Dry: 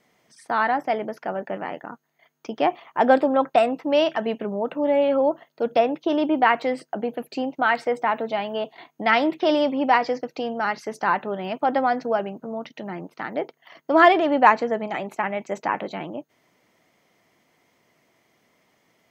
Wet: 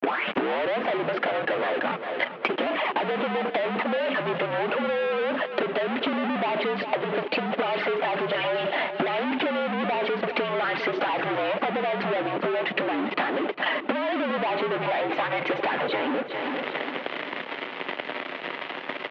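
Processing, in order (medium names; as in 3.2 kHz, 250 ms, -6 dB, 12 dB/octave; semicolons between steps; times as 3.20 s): tape start-up on the opening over 0.83 s; power-law waveshaper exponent 0.7; touch-sensitive flanger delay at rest 10.2 ms, full sweep at -13 dBFS; fuzz box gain 43 dB, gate -46 dBFS; transient shaper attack +8 dB, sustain +2 dB; mistuned SSB -59 Hz 320–3300 Hz; on a send: feedback delay 401 ms, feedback 43%, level -14 dB; on the sum: compression 6:1, threshold -24 dBFS, peak gain reduction 15.5 dB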